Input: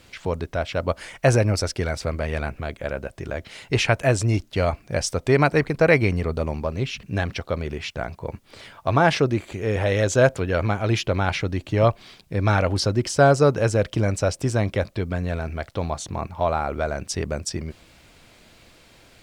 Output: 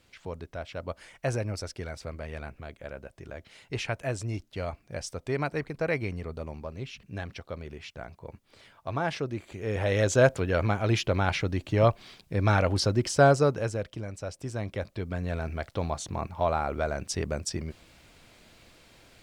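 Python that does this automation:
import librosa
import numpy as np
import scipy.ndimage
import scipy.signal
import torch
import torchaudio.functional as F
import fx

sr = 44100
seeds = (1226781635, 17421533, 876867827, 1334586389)

y = fx.gain(x, sr, db=fx.line((9.28, -12.0), (10.01, -3.5), (13.27, -3.5), (14.08, -16.0), (15.44, -4.0)))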